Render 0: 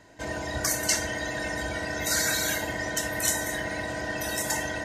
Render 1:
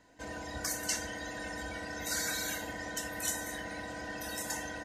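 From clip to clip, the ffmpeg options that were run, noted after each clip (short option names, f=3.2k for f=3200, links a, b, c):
-af "aecho=1:1:4:0.38,volume=-9dB"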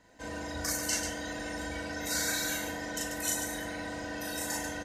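-af "aecho=1:1:37.9|139.9:0.891|0.501"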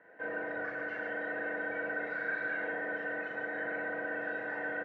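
-filter_complex "[0:a]asplit=2[a][b];[b]highpass=f=720:p=1,volume=21dB,asoftclip=type=tanh:threshold=-16dB[c];[a][c]amix=inputs=2:normalize=0,lowpass=f=1.1k:p=1,volume=-6dB,highpass=f=130:w=0.5412,highpass=f=130:w=1.3066,equalizer=f=170:t=q:w=4:g=-3,equalizer=f=250:t=q:w=4:g=-9,equalizer=f=450:t=q:w=4:g=5,equalizer=f=960:t=q:w=4:g=-8,equalizer=f=1.6k:t=q:w=4:g=8,lowpass=f=2.2k:w=0.5412,lowpass=f=2.2k:w=1.3066,volume=-7dB"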